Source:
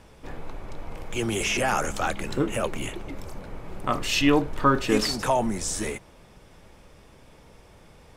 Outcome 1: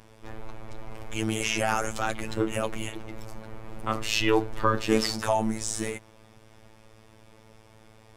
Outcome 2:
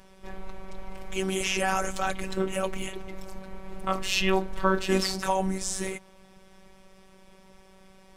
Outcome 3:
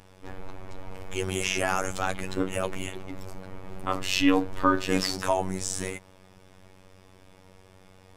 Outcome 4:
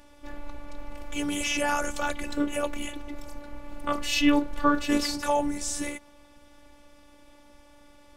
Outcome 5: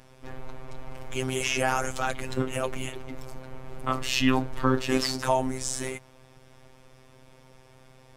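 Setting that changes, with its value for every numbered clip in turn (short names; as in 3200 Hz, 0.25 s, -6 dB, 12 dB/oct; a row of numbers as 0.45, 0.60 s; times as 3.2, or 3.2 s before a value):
robotiser, frequency: 110, 190, 94, 290, 130 Hz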